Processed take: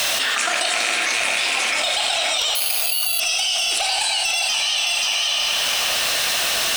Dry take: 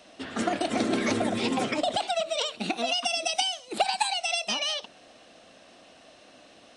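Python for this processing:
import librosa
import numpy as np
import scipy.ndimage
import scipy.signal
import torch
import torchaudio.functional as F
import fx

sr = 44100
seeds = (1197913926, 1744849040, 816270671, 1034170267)

y = fx.rattle_buzz(x, sr, strikes_db=-31.0, level_db=-19.0)
y = scipy.signal.sosfilt(scipy.signal.butter(2, 1300.0, 'highpass', fs=sr, output='sos'), y)
y = fx.high_shelf(y, sr, hz=5900.0, db=7.0)
y = fx.dmg_noise_colour(y, sr, seeds[0], colour='white', level_db=-62.0)
y = y * (1.0 - 0.45 / 2.0 + 0.45 / 2.0 * np.cos(2.0 * np.pi * 1.6 * (np.arange(len(y)) / sr)))
y = fx.clip_asym(y, sr, top_db=-23.5, bottom_db=-19.5)
y = y + 10.0 ** (-8.0 / 20.0) * np.pad(y, (int(530 * sr / 1000.0), 0))[:len(y)]
y = fx.rev_plate(y, sr, seeds[1], rt60_s=2.5, hf_ratio=0.75, predelay_ms=0, drr_db=1.0)
y = fx.resample_bad(y, sr, factor=6, down='filtered', up='zero_stuff', at=(2.55, 3.2))
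y = fx.env_flatten(y, sr, amount_pct=100)
y = y * 10.0 ** (-1.0 / 20.0)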